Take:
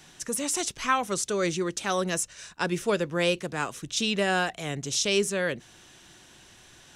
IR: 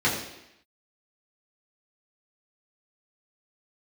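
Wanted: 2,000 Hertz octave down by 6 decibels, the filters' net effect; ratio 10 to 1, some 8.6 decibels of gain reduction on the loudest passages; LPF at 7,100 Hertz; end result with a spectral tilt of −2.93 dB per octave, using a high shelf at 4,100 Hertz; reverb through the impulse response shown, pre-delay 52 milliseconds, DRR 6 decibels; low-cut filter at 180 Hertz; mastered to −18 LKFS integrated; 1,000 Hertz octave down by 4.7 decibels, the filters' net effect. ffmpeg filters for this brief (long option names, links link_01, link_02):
-filter_complex "[0:a]highpass=180,lowpass=7100,equalizer=frequency=1000:width_type=o:gain=-4.5,equalizer=frequency=2000:width_type=o:gain=-7.5,highshelf=frequency=4100:gain=3.5,acompressor=threshold=-30dB:ratio=10,asplit=2[link_01][link_02];[1:a]atrim=start_sample=2205,adelay=52[link_03];[link_02][link_03]afir=irnorm=-1:irlink=0,volume=-21dB[link_04];[link_01][link_04]amix=inputs=2:normalize=0,volume=16dB"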